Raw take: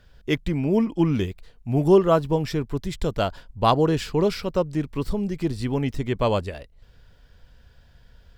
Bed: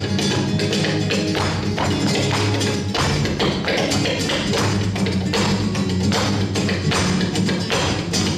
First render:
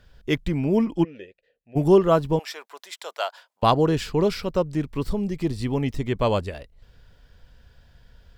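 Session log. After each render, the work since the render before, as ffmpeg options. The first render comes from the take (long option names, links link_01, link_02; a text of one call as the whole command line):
ffmpeg -i in.wav -filter_complex "[0:a]asplit=3[link_01][link_02][link_03];[link_01]afade=type=out:start_time=1.03:duration=0.02[link_04];[link_02]asplit=3[link_05][link_06][link_07];[link_05]bandpass=frequency=530:width_type=q:width=8,volume=0dB[link_08];[link_06]bandpass=frequency=1840:width_type=q:width=8,volume=-6dB[link_09];[link_07]bandpass=frequency=2480:width_type=q:width=8,volume=-9dB[link_10];[link_08][link_09][link_10]amix=inputs=3:normalize=0,afade=type=in:start_time=1.03:duration=0.02,afade=type=out:start_time=1.75:duration=0.02[link_11];[link_03]afade=type=in:start_time=1.75:duration=0.02[link_12];[link_04][link_11][link_12]amix=inputs=3:normalize=0,asettb=1/sr,asplit=3[link_13][link_14][link_15];[link_13]atrim=end=2.394[link_16];[link_14]atrim=start=2.39:end=3.63,asetpts=PTS-STARTPTS,afade=type=in:duration=0.004:curve=qsin,afade=type=out:start_time=1.236:duration=0.004:curve=qsin,highpass=frequency=660:width=0.5412,highpass=frequency=660:width=1.3066[link_17];[link_15]atrim=start=3.626[link_18];[link_16][link_17]acrossfade=duration=0.004:curve1=hsin:curve2=qsin[link_19];[link_19][link_18]acrossfade=duration=0.004:curve1=qsin:curve2=hsin,asettb=1/sr,asplit=3[link_20][link_21][link_22];[link_20]atrim=end=5.264[link_23];[link_21]atrim=start=5.26:end=6.08,asetpts=PTS-STARTPTS,afade=type=in:duration=0.004:curve=qsin,afade=type=out:start_time=0.816:duration=0.004:curve=qsin,bandreject=frequency=1500:width=8[link_24];[link_22]atrim=start=6.076[link_25];[link_23][link_24]acrossfade=duration=0.004:curve1=hsin:curve2=qsin[link_26];[link_26][link_25]acrossfade=duration=0.004:curve1=qsin:curve2=hsin" out.wav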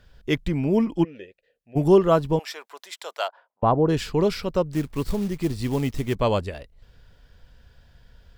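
ffmpeg -i in.wav -filter_complex "[0:a]asplit=3[link_01][link_02][link_03];[link_01]afade=type=out:start_time=3.27:duration=0.02[link_04];[link_02]lowpass=1100,afade=type=in:start_time=3.27:duration=0.02,afade=type=out:start_time=3.88:duration=0.02[link_05];[link_03]afade=type=in:start_time=3.88:duration=0.02[link_06];[link_04][link_05][link_06]amix=inputs=3:normalize=0,asettb=1/sr,asplit=3[link_07][link_08][link_09];[link_07]atrim=end=4.724[link_10];[link_08]atrim=start=4.72:end=6.15,asetpts=PTS-STARTPTS,afade=type=in:duration=0.004:curve=qsin,afade=type=out:start_time=1.426:duration=0.004:curve=qsin,acrusher=bits=5:mode=log:mix=0:aa=0.000001[link_11];[link_09]atrim=start=6.146[link_12];[link_10][link_11]acrossfade=duration=0.004:curve1=hsin:curve2=qsin[link_13];[link_13][link_12]acrossfade=duration=0.004:curve1=qsin:curve2=hsin" out.wav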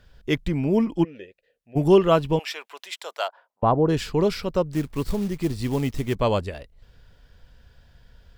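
ffmpeg -i in.wav -filter_complex "[0:a]asettb=1/sr,asplit=3[link_01][link_02][link_03];[link_01]atrim=end=1.904[link_04];[link_02]atrim=start=1.9:end=2.96,asetpts=PTS-STARTPTS,afade=type=in:duration=0.004:curve=qsin,afade=type=out:start_time=1.056:duration=0.004:curve=qsin,equalizer=frequency=2700:width_type=o:width=0.74:gain=8.5[link_05];[link_03]atrim=start=2.956[link_06];[link_04][link_05]acrossfade=duration=0.004:curve1=hsin:curve2=qsin[link_07];[link_07][link_06]acrossfade=duration=0.004:curve1=qsin:curve2=hsin" out.wav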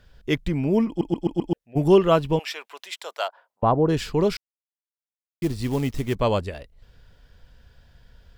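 ffmpeg -i in.wav -filter_complex "[0:a]asplit=8[link_01][link_02][link_03][link_04][link_05][link_06][link_07][link_08];[link_01]atrim=end=1.012[link_09];[link_02]atrim=start=0.878:end=1.012[link_10];[link_03]atrim=start=0.878:end=1.012[link_11];[link_04]atrim=start=0.878:end=1.012[link_12];[link_05]atrim=start=0.878:end=1.012[link_13];[link_06]atrim=start=1.528:end=4.37,asetpts=PTS-STARTPTS,afade=type=out:start_time=2.838:duration=0.004:curve=hsin[link_14];[link_07]atrim=start=4.37:end=5.42,asetpts=PTS-STARTPTS,volume=0[link_15];[link_08]atrim=start=5.42,asetpts=PTS-STARTPTS,afade=type=in:duration=0.004:curve=hsin[link_16];[link_09][link_10]acrossfade=duration=0.004:curve1=hsin:curve2=hsin[link_17];[link_17][link_11]acrossfade=duration=0.004:curve1=hsin:curve2=hsin[link_18];[link_18][link_12]acrossfade=duration=0.004:curve1=hsin:curve2=hsin[link_19];[link_19][link_13]acrossfade=duration=0.004:curve1=hsin:curve2=hsin[link_20];[link_14][link_15][link_16]concat=n=3:v=0:a=1[link_21];[link_20][link_21]acrossfade=duration=0.004:curve1=hsin:curve2=hsin" out.wav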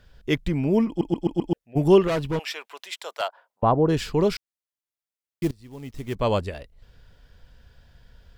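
ffmpeg -i in.wav -filter_complex "[0:a]asettb=1/sr,asplit=3[link_01][link_02][link_03];[link_01]atrim=end=2.074[link_04];[link_02]atrim=start=2.07:end=3.22,asetpts=PTS-STARTPTS,afade=type=in:duration=0.004:curve=qsin,afade=type=out:start_time=1.146:duration=0.004:curve=qsin,volume=21.5dB,asoftclip=hard,volume=-21.5dB[link_05];[link_03]atrim=start=3.216[link_06];[link_04][link_05]acrossfade=duration=0.004:curve1=hsin:curve2=qsin[link_07];[link_07][link_06]acrossfade=duration=0.004:curve1=qsin:curve2=hsin,asplit=2[link_08][link_09];[link_08]atrim=end=5.51,asetpts=PTS-STARTPTS,afade=type=out:start_time=5.506:duration=0.004:curve=hsin:silence=0.0794328[link_10];[link_09]atrim=start=5.51,asetpts=PTS-STARTPTS,afade=type=in:duration=0.82:curve=qua:silence=0.0794328[link_11];[link_10][link_11]concat=n=2:v=0:a=1" out.wav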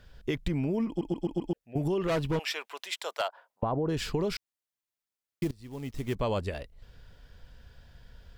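ffmpeg -i in.wav -af "alimiter=limit=-16dB:level=0:latency=1:release=31,acompressor=threshold=-26dB:ratio=5" out.wav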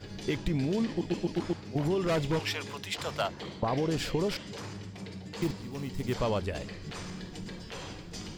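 ffmpeg -i in.wav -i bed.wav -filter_complex "[1:a]volume=-22dB[link_01];[0:a][link_01]amix=inputs=2:normalize=0" out.wav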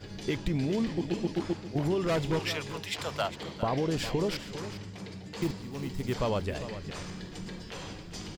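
ffmpeg -i in.wav -af "aecho=1:1:405:0.237" out.wav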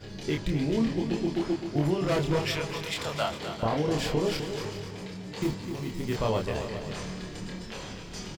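ffmpeg -i in.wav -filter_complex "[0:a]asplit=2[link_01][link_02];[link_02]adelay=27,volume=-3dB[link_03];[link_01][link_03]amix=inputs=2:normalize=0,aecho=1:1:257|514|771|1028|1285:0.335|0.151|0.0678|0.0305|0.0137" out.wav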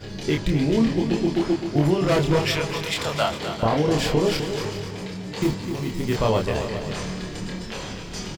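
ffmpeg -i in.wav -af "volume=6.5dB" out.wav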